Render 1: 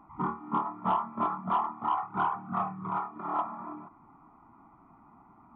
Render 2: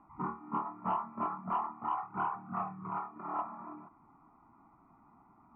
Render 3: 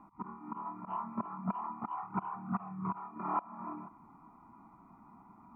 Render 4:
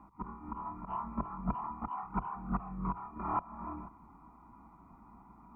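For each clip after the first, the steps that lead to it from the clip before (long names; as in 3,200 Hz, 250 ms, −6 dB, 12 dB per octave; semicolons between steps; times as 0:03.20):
Butterworth low-pass 2,900 Hz 96 dB per octave; level −5.5 dB
volume swells 282 ms; hollow resonant body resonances 200/980/2,400 Hz, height 7 dB; level +2.5 dB
sub-octave generator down 2 octaves, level −2 dB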